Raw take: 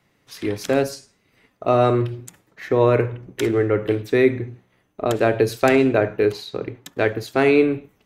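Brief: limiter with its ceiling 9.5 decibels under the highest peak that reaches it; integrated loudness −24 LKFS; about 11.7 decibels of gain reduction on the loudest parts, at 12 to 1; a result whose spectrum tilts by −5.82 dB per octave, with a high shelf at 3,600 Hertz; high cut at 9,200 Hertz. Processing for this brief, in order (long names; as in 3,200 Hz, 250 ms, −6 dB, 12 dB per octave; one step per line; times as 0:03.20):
low-pass filter 9,200 Hz
high-shelf EQ 3,600 Hz −6 dB
downward compressor 12 to 1, threshold −23 dBFS
level +8 dB
brickwall limiter −12 dBFS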